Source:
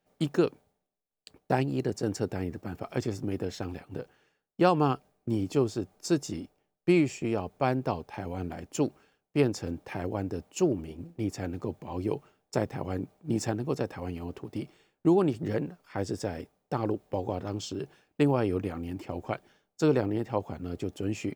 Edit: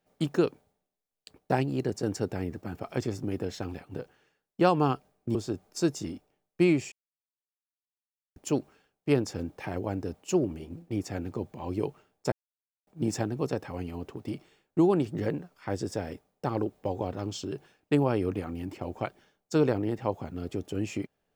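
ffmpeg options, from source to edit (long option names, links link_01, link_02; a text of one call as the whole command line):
ffmpeg -i in.wav -filter_complex "[0:a]asplit=6[link_01][link_02][link_03][link_04][link_05][link_06];[link_01]atrim=end=5.352[link_07];[link_02]atrim=start=5.628:end=7.2,asetpts=PTS-STARTPTS,afade=type=out:start_time=1.568:duration=0.004:curve=hsin[link_08];[link_03]atrim=start=7.2:end=8.64,asetpts=PTS-STARTPTS,volume=0[link_09];[link_04]atrim=start=8.64:end=12.6,asetpts=PTS-STARTPTS,afade=type=in:duration=0.004:curve=hsin,afade=type=out:start_time=3.956:duration=0.004:curve=hsin[link_10];[link_05]atrim=start=12.6:end=13.15,asetpts=PTS-STARTPTS,volume=0[link_11];[link_06]atrim=start=13.15,asetpts=PTS-STARTPTS,afade=type=in:duration=0.004:curve=hsin[link_12];[link_08][link_09][link_10][link_11][link_12]concat=n=5:v=0:a=1[link_13];[link_07][link_13]acrossfade=duration=0.004:curve1=hsin:curve2=hsin" out.wav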